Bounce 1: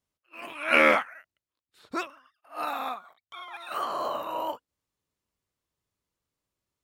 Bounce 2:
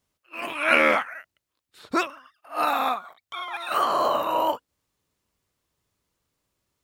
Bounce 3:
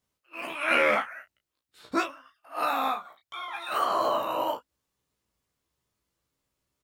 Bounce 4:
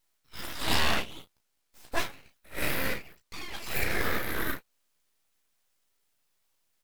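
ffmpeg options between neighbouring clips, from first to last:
ffmpeg -i in.wav -af "acompressor=threshold=-24dB:ratio=6,volume=8.5dB" out.wav
ffmpeg -i in.wav -af "aecho=1:1:15|33:0.596|0.447,volume=-5.5dB" out.wav
ffmpeg -i in.wav -af "aexciter=amount=1.8:drive=9.8:freq=9000,aeval=exprs='abs(val(0))':channel_layout=same" out.wav

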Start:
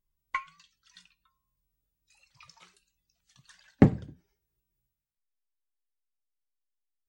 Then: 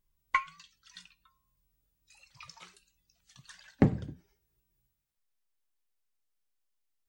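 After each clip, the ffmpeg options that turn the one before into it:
ffmpeg -i in.wav -af "alimiter=limit=-15dB:level=0:latency=1:release=262,volume=4.5dB" out.wav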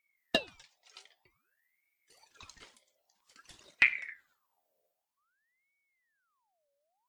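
ffmpeg -i in.wav -af "aeval=exprs='0.316*(cos(1*acos(clip(val(0)/0.316,-1,1)))-cos(1*PI/2))+0.0398*(cos(6*acos(clip(val(0)/0.316,-1,1)))-cos(6*PI/2))':channel_layout=same,aeval=exprs='val(0)*sin(2*PI*1400*n/s+1400*0.6/0.52*sin(2*PI*0.52*n/s))':channel_layout=same" out.wav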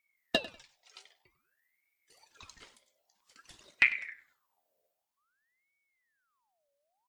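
ffmpeg -i in.wav -af "aecho=1:1:97|194:0.133|0.0293" out.wav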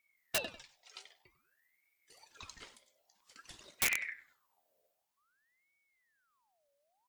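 ffmpeg -i in.wav -af "aeval=exprs='(mod(16.8*val(0)+1,2)-1)/16.8':channel_layout=same,volume=2dB" out.wav

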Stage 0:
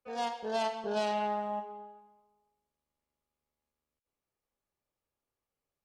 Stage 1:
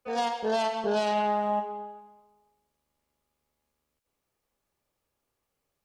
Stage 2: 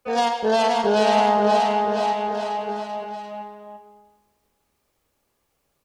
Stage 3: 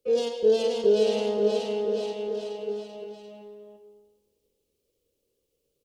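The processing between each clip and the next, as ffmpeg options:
ffmpeg -i in.wav -af "alimiter=level_in=2.5dB:limit=-24dB:level=0:latency=1:release=114,volume=-2.5dB,volume=8.5dB" out.wav
ffmpeg -i in.wav -af "aecho=1:1:530|1007|1436|1823|2170:0.631|0.398|0.251|0.158|0.1,volume=7.5dB" out.wav
ffmpeg -i in.wav -af "firequalizer=gain_entry='entry(240,0);entry(480,13);entry(720,-15);entry(1800,-13);entry(2900,1)':delay=0.05:min_phase=1,volume=-7.5dB" out.wav

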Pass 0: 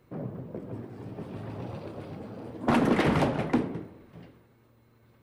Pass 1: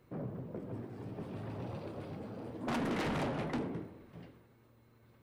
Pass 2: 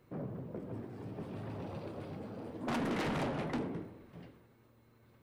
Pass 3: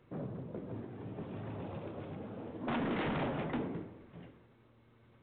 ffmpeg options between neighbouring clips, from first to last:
ffmpeg -i in.wav -af "asoftclip=type=tanh:threshold=-29dB,volume=-3dB" out.wav
ffmpeg -i in.wav -af "bandreject=frequency=60:width_type=h:width=6,bandreject=frequency=120:width_type=h:width=6" out.wav
ffmpeg -i in.wav -ar 8000 -c:a pcm_mulaw out.wav

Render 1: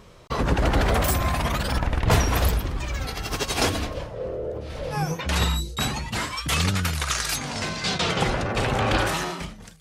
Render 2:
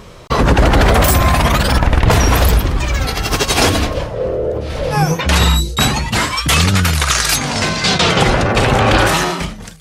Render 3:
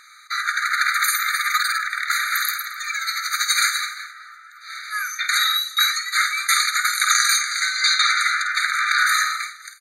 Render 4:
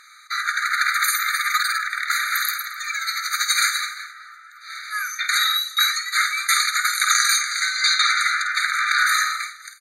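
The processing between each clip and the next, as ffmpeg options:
ffmpeg -i in.wav -af "alimiter=level_in=13dB:limit=-1dB:release=50:level=0:latency=1,volume=-1dB" out.wav
ffmpeg -i in.wav -filter_complex "[0:a]asplit=2[link_01][link_02];[link_02]aecho=0:1:50|255:0.316|0.1[link_03];[link_01][link_03]amix=inputs=2:normalize=0,afftfilt=real='re*eq(mod(floor(b*sr/1024/1200),2),1)':imag='im*eq(mod(floor(b*sr/1024/1200),2),1)':win_size=1024:overlap=0.75" out.wav
ffmpeg -i in.wav -ar 48000 -c:a libmp3lame -b:a 80k out.mp3

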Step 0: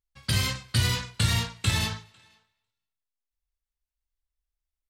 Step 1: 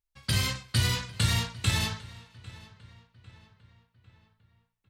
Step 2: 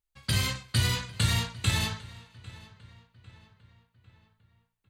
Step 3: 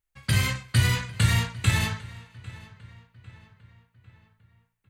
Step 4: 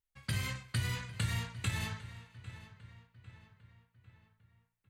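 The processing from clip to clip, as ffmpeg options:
ffmpeg -i in.wav -filter_complex "[0:a]asplit=2[link_01][link_02];[link_02]adelay=800,lowpass=frequency=3600:poles=1,volume=-19.5dB,asplit=2[link_03][link_04];[link_04]adelay=800,lowpass=frequency=3600:poles=1,volume=0.49,asplit=2[link_05][link_06];[link_06]adelay=800,lowpass=frequency=3600:poles=1,volume=0.49,asplit=2[link_07][link_08];[link_08]adelay=800,lowpass=frequency=3600:poles=1,volume=0.49[link_09];[link_01][link_03][link_05][link_07][link_09]amix=inputs=5:normalize=0,volume=-1.5dB" out.wav
ffmpeg -i in.wav -af "bandreject=frequency=5400:width=10" out.wav
ffmpeg -i in.wav -af "equalizer=frequency=125:width_type=o:width=1:gain=4,equalizer=frequency=2000:width_type=o:width=1:gain=5,equalizer=frequency=4000:width_type=o:width=1:gain=-5,volume=2dB" out.wav
ffmpeg -i in.wav -af "acompressor=threshold=-28dB:ratio=2,volume=-7dB" out.wav

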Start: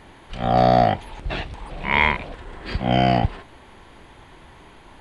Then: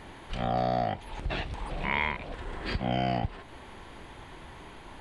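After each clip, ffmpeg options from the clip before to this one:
ffmpeg -i in.wav -af "acompressor=threshold=-30dB:ratio=2.5" out.wav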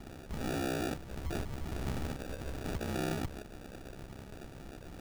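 ffmpeg -i in.wav -af "aeval=exprs='val(0)*sin(2*PI*33*n/s)':channel_layout=same,acrusher=samples=42:mix=1:aa=0.000001,asoftclip=type=tanh:threshold=-32dB,volume=2.5dB" out.wav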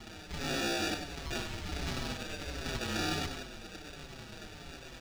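ffmpeg -i in.wav -filter_complex "[0:a]acrossover=split=5400[link_01][link_02];[link_01]crystalizer=i=9.5:c=0[link_03];[link_03][link_02]amix=inputs=2:normalize=0,aecho=1:1:96|192|288|384|480:0.422|0.19|0.0854|0.0384|0.0173,asplit=2[link_04][link_05];[link_05]adelay=5.8,afreqshift=-1.4[link_06];[link_04][link_06]amix=inputs=2:normalize=1" out.wav

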